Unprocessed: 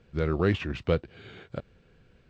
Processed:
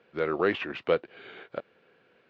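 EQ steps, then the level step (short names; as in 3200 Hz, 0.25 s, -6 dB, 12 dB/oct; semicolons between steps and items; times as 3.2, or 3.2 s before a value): BPF 410–3100 Hz; +4.0 dB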